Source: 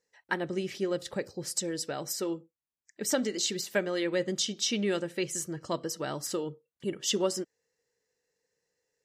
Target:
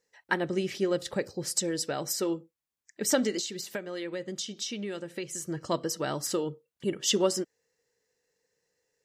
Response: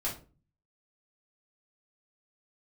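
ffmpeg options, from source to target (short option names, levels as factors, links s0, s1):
-filter_complex "[0:a]asettb=1/sr,asplit=3[s0][s1][s2];[s0]atrim=end=3.394[s3];[s1]atrim=start=3.39:end=5.48,asetpts=PTS-STARTPTS,afade=t=in:d=0.004:c=qsin,afade=t=out:st=2.086:d=0.004:c=qsin,acompressor=threshold=0.0141:ratio=4[s4];[s2]atrim=start=5.476[s5];[s3][s4]acrossfade=d=0.004:c1=hsin:c2=qsin[s6];[s6][s5]acrossfade=d=0.004:c1=qsin:c2=hsin,volume=1.41"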